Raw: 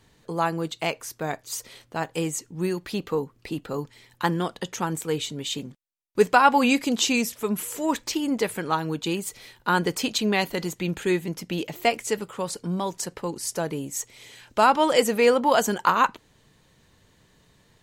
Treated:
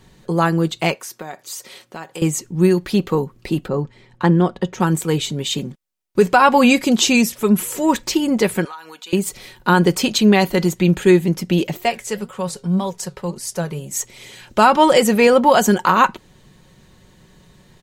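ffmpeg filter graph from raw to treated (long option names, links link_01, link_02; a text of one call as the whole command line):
ffmpeg -i in.wav -filter_complex "[0:a]asettb=1/sr,asplit=3[link_01][link_02][link_03];[link_01]atrim=end=0.944[link_04];[link_02]atrim=start=0.94:end=2.22,asetpts=PTS-STARTPTS,afade=type=in:duration=0.004:curve=qsin,afade=type=out:start_time=1.276:duration=0.004:curve=qsin,highpass=160,acompressor=threshold=-35dB:ratio=3:attack=3.2:release=140:knee=1:detection=peak,lowshelf=frequency=320:gain=-8[link_05];[link_03]atrim=start=2.216[link_06];[link_04][link_05]acrossfade=duration=0.004:curve1=hsin:curve2=qsin[link_07];[link_07][link_06]acrossfade=duration=0.004:curve1=qsin:curve2=hsin,asettb=1/sr,asplit=3[link_08][link_09][link_10];[link_08]atrim=end=3.684[link_11];[link_09]atrim=start=3.68:end=4.8,asetpts=PTS-STARTPTS,afade=type=in:duration=0.004:curve=qsin,afade=type=out:start_time=1.116:duration=0.004:curve=qsin,adynamicsmooth=sensitivity=7.5:basefreq=7700,highshelf=frequency=2000:gain=-9.5[link_12];[link_10]atrim=start=4.796[link_13];[link_11][link_12]acrossfade=duration=0.004:curve1=hsin:curve2=qsin[link_14];[link_14][link_13]acrossfade=duration=0.004:curve1=qsin:curve2=hsin,asettb=1/sr,asplit=3[link_15][link_16][link_17];[link_15]atrim=end=8.654[link_18];[link_16]atrim=start=8.65:end=9.13,asetpts=PTS-STARTPTS,afade=type=in:duration=0.004:curve=qsin,afade=type=out:start_time=0.476:duration=0.004:curve=qsin,highpass=1000,acompressor=threshold=-42dB:ratio=4:attack=3.2:release=140:knee=1:detection=peak,aecho=1:1:4.1:0.45,atrim=end_sample=21168[link_19];[link_17]atrim=start=9.126[link_20];[link_18][link_19]acrossfade=duration=0.004:curve1=hsin:curve2=qsin[link_21];[link_21][link_20]acrossfade=duration=0.004:curve1=qsin:curve2=hsin,asettb=1/sr,asplit=3[link_22][link_23][link_24];[link_22]atrim=end=11.774[link_25];[link_23]atrim=start=11.77:end=13.91,asetpts=PTS-STARTPTS,afade=type=in:duration=0.004:curve=qsin,afade=type=out:start_time=2.136:duration=0.004:curve=qsin,equalizer=frequency=300:width_type=o:width=0.39:gain=-13.5,flanger=delay=3.4:depth=4.2:regen=83:speed=1.8:shape=triangular[link_26];[link_24]atrim=start=13.906[link_27];[link_25][link_26]acrossfade=duration=0.004:curve1=hsin:curve2=qsin[link_28];[link_28][link_27]acrossfade=duration=0.004:curve1=qsin:curve2=hsin,lowshelf=frequency=440:gain=5.5,aecho=1:1:5.4:0.38,alimiter=level_in=7dB:limit=-1dB:release=50:level=0:latency=1,volume=-1dB" out.wav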